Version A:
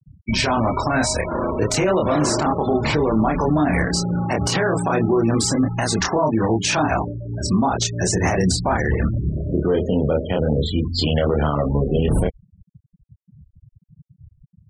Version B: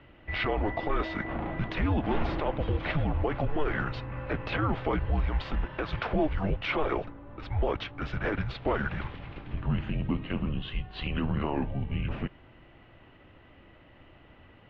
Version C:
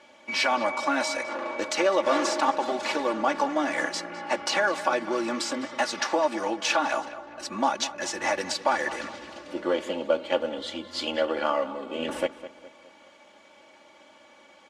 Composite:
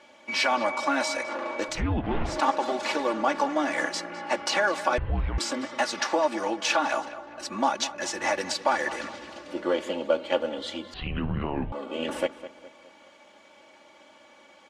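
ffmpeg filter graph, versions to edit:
-filter_complex "[1:a]asplit=3[a][b][c];[2:a]asplit=4[d][e][f][g];[d]atrim=end=1.83[h];[a]atrim=start=1.67:end=2.41[i];[e]atrim=start=2.25:end=4.982[j];[b]atrim=start=4.978:end=5.382[k];[f]atrim=start=5.378:end=10.942[l];[c]atrim=start=10.938:end=11.722[m];[g]atrim=start=11.718[n];[h][i]acrossfade=d=0.16:c1=tri:c2=tri[o];[o][j]acrossfade=d=0.16:c1=tri:c2=tri[p];[p][k]acrossfade=d=0.004:c1=hsin:c2=hsin[q];[q][l]acrossfade=d=0.004:c1=hsin:c2=hsin[r];[r][m]acrossfade=d=0.004:c1=hsin:c2=hsin[s];[s][n]acrossfade=d=0.004:c1=hsin:c2=hsin"

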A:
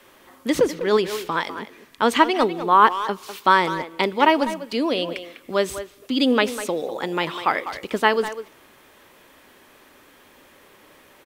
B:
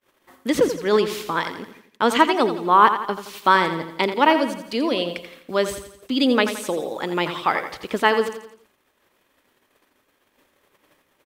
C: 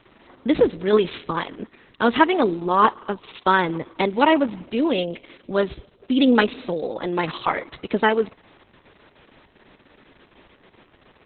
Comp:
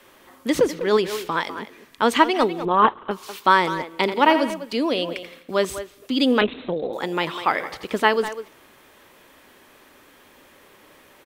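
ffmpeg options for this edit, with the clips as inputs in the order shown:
-filter_complex "[2:a]asplit=2[a][b];[1:a]asplit=3[c][d][e];[0:a]asplit=6[f][g][h][i][j][k];[f]atrim=end=2.652[l];[a]atrim=start=2.648:end=3.112[m];[g]atrim=start=3.108:end=4.022[n];[c]atrim=start=4.018:end=4.502[o];[h]atrim=start=4.498:end=5.232[p];[d]atrim=start=5.228:end=5.652[q];[i]atrim=start=5.648:end=6.412[r];[b]atrim=start=6.408:end=6.932[s];[j]atrim=start=6.928:end=7.602[t];[e]atrim=start=7.598:end=8.052[u];[k]atrim=start=8.048[v];[l][m]acrossfade=d=0.004:c1=hsin:c2=hsin[w];[w][n]acrossfade=d=0.004:c1=hsin:c2=hsin[x];[x][o]acrossfade=d=0.004:c1=hsin:c2=hsin[y];[y][p]acrossfade=d=0.004:c1=hsin:c2=hsin[z];[z][q]acrossfade=d=0.004:c1=hsin:c2=hsin[aa];[aa][r]acrossfade=d=0.004:c1=hsin:c2=hsin[ab];[ab][s]acrossfade=d=0.004:c1=hsin:c2=hsin[ac];[ac][t]acrossfade=d=0.004:c1=hsin:c2=hsin[ad];[ad][u]acrossfade=d=0.004:c1=hsin:c2=hsin[ae];[ae][v]acrossfade=d=0.004:c1=hsin:c2=hsin"

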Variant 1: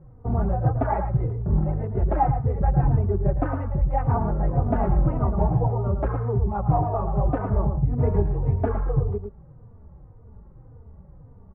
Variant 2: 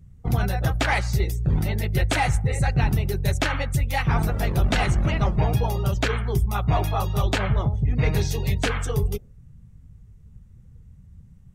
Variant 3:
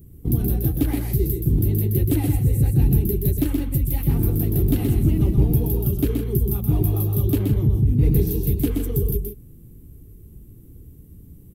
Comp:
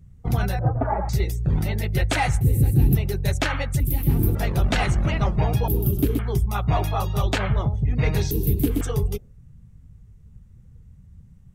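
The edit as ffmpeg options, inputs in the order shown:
-filter_complex "[2:a]asplit=4[a][b][c][d];[1:a]asplit=6[e][f][g][h][i][j];[e]atrim=end=0.592[k];[0:a]atrim=start=0.588:end=1.092[l];[f]atrim=start=1.088:end=2.412[m];[a]atrim=start=2.408:end=2.952[n];[g]atrim=start=2.948:end=3.802[o];[b]atrim=start=3.798:end=4.352[p];[h]atrim=start=4.348:end=5.682[q];[c]atrim=start=5.678:end=6.192[r];[i]atrim=start=6.188:end=8.312[s];[d]atrim=start=8.308:end=8.812[t];[j]atrim=start=8.808[u];[k][l]acrossfade=d=0.004:c1=hsin:c2=hsin[v];[v][m]acrossfade=d=0.004:c1=hsin:c2=hsin[w];[w][n]acrossfade=d=0.004:c1=hsin:c2=hsin[x];[x][o]acrossfade=d=0.004:c1=hsin:c2=hsin[y];[y][p]acrossfade=d=0.004:c1=hsin:c2=hsin[z];[z][q]acrossfade=d=0.004:c1=hsin:c2=hsin[aa];[aa][r]acrossfade=d=0.004:c1=hsin:c2=hsin[ab];[ab][s]acrossfade=d=0.004:c1=hsin:c2=hsin[ac];[ac][t]acrossfade=d=0.004:c1=hsin:c2=hsin[ad];[ad][u]acrossfade=d=0.004:c1=hsin:c2=hsin"

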